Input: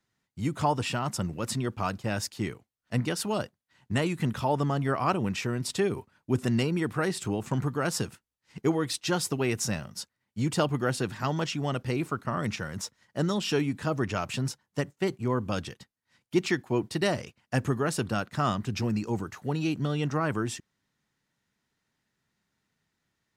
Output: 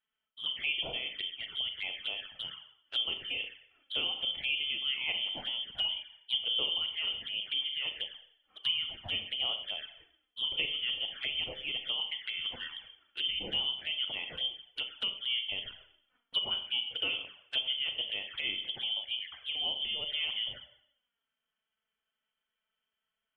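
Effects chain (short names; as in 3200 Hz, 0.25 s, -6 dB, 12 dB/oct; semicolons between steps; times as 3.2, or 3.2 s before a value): vibrato 1.1 Hz 7.8 cents; notches 50/100/150/200/250/300/350 Hz; inverted band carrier 3300 Hz; Schroeder reverb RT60 0.68 s, combs from 29 ms, DRR 6.5 dB; envelope flanger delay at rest 4.6 ms, full sweep at -26 dBFS; gain -5 dB; MP3 40 kbps 44100 Hz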